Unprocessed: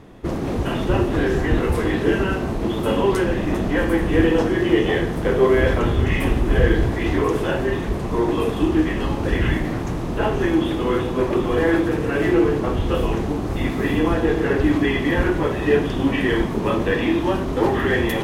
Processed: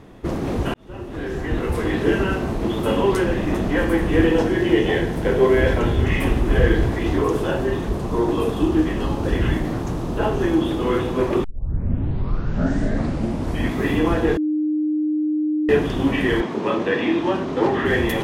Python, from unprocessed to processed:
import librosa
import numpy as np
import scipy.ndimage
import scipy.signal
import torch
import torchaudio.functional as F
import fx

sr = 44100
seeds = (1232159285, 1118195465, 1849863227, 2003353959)

y = fx.notch(x, sr, hz=1200.0, q=8.1, at=(4.32, 6.04))
y = fx.peak_eq(y, sr, hz=2100.0, db=-5.5, octaves=0.77, at=(6.99, 10.83))
y = fx.bandpass_edges(y, sr, low_hz=fx.line((16.4, 240.0), (17.84, 120.0)), high_hz=6000.0, at=(16.4, 17.84), fade=0.02)
y = fx.edit(y, sr, fx.fade_in_span(start_s=0.74, length_s=1.32),
    fx.tape_start(start_s=11.44, length_s=2.38),
    fx.bleep(start_s=14.37, length_s=1.32, hz=305.0, db=-18.0), tone=tone)